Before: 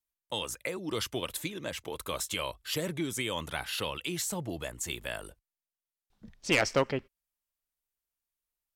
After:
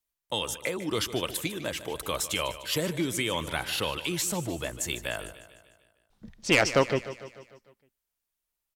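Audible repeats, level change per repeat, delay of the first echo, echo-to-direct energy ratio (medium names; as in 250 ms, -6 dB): 5, -5.0 dB, 150 ms, -12.5 dB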